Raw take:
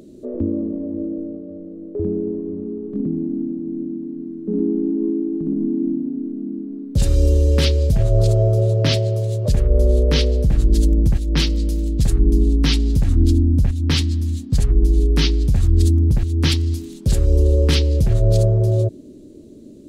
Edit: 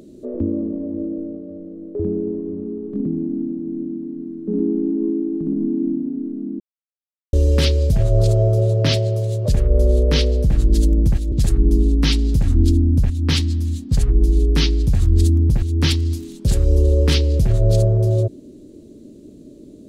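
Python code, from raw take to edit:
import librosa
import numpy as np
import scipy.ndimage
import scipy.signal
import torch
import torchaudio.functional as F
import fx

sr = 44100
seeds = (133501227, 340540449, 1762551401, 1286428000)

y = fx.edit(x, sr, fx.silence(start_s=6.6, length_s=0.73),
    fx.cut(start_s=11.32, length_s=0.61), tone=tone)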